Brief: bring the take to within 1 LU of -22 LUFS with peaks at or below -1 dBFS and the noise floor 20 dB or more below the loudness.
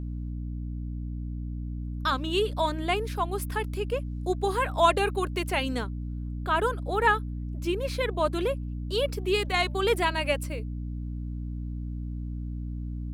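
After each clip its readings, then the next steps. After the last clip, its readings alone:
hum 60 Hz; harmonics up to 300 Hz; hum level -31 dBFS; loudness -29.0 LUFS; peak -8.5 dBFS; loudness target -22.0 LUFS
-> de-hum 60 Hz, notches 5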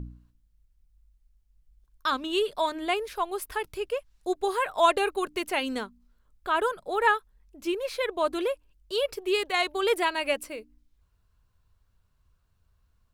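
hum none; loudness -28.0 LUFS; peak -9.0 dBFS; loudness target -22.0 LUFS
-> gain +6 dB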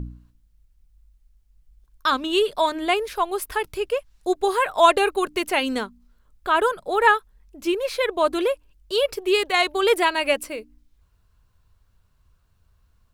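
loudness -22.0 LUFS; peak -3.0 dBFS; noise floor -63 dBFS

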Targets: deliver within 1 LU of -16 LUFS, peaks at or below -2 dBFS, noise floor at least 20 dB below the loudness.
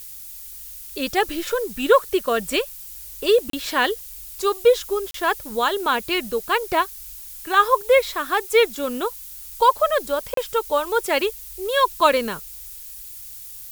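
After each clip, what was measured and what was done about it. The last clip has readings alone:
dropouts 3; longest dropout 33 ms; noise floor -38 dBFS; noise floor target -41 dBFS; loudness -21.0 LUFS; peak -2.5 dBFS; loudness target -16.0 LUFS
-> interpolate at 3.5/5.11/10.34, 33 ms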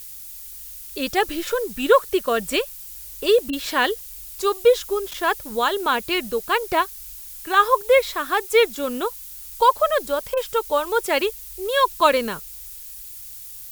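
dropouts 0; noise floor -38 dBFS; noise floor target -41 dBFS
-> denoiser 6 dB, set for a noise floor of -38 dBFS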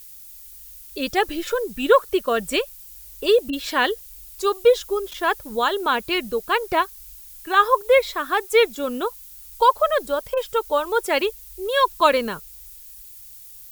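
noise floor -43 dBFS; loudness -21.5 LUFS; peak -2.5 dBFS; loudness target -16.0 LUFS
-> gain +5.5 dB; limiter -2 dBFS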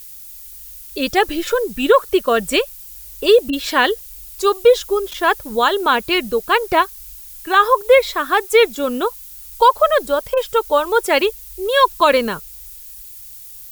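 loudness -16.5 LUFS; peak -2.0 dBFS; noise floor -37 dBFS

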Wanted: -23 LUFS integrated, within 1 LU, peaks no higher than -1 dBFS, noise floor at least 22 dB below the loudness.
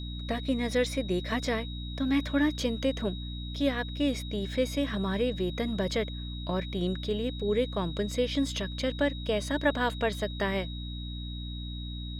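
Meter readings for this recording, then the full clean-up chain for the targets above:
hum 60 Hz; harmonics up to 300 Hz; hum level -35 dBFS; steady tone 3800 Hz; tone level -43 dBFS; loudness -30.5 LUFS; peak -13.5 dBFS; loudness target -23.0 LUFS
-> de-hum 60 Hz, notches 5; notch 3800 Hz, Q 30; gain +7.5 dB

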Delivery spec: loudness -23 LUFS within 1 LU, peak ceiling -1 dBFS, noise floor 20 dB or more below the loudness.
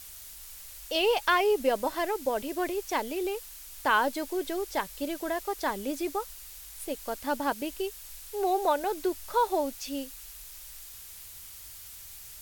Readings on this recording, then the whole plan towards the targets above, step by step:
noise floor -46 dBFS; noise floor target -50 dBFS; loudness -30.0 LUFS; peak -12.5 dBFS; loudness target -23.0 LUFS
-> noise print and reduce 6 dB; gain +7 dB

